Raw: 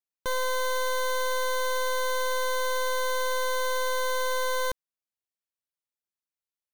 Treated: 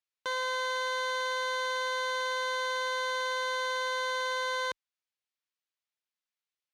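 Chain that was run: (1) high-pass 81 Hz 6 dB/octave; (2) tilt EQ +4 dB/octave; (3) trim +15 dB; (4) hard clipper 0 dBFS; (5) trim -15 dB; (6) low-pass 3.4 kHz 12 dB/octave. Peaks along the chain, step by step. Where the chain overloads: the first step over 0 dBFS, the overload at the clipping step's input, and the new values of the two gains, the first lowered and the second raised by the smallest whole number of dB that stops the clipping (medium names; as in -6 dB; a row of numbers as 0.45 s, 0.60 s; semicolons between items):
-22.0 dBFS, -8.5 dBFS, +6.5 dBFS, 0.0 dBFS, -15.0 dBFS, -22.5 dBFS; step 3, 6.5 dB; step 3 +8 dB, step 5 -8 dB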